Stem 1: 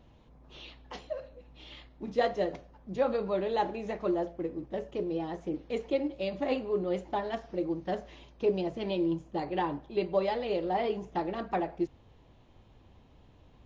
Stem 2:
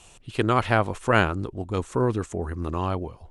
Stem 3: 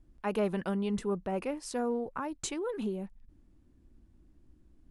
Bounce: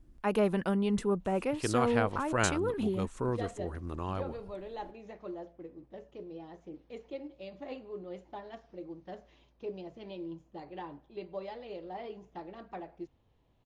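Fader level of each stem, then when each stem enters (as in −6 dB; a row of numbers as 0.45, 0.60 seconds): −12.0, −9.5, +2.5 decibels; 1.20, 1.25, 0.00 seconds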